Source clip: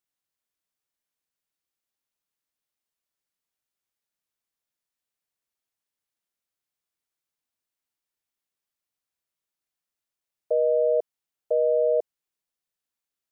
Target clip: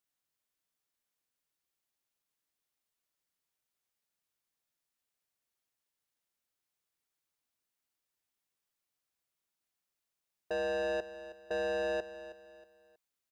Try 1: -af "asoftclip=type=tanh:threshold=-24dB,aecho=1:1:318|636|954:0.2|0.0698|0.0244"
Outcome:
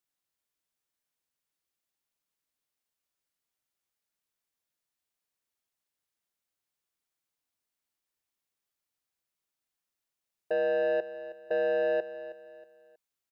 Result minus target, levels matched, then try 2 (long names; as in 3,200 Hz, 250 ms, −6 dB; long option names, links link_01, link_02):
soft clipping: distortion −5 dB
-af "asoftclip=type=tanh:threshold=-31.5dB,aecho=1:1:318|636|954:0.2|0.0698|0.0244"